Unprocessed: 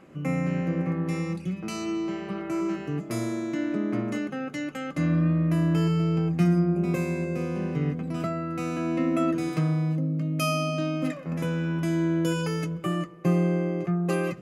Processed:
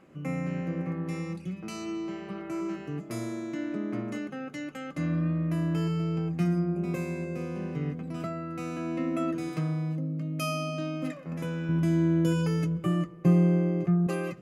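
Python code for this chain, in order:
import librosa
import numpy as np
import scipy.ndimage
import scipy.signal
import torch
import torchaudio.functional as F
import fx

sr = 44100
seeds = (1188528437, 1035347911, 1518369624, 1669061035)

y = fx.low_shelf(x, sr, hz=270.0, db=10.5, at=(11.69, 14.07))
y = F.gain(torch.from_numpy(y), -5.0).numpy()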